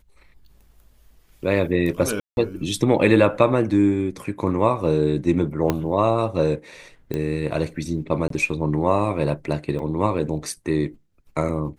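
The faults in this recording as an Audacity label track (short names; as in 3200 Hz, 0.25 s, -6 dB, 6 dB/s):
2.200000	2.370000	gap 0.171 s
5.700000	5.700000	pop -7 dBFS
7.140000	7.140000	pop -14 dBFS
8.280000	8.300000	gap 23 ms
9.790000	9.790000	gap 2.9 ms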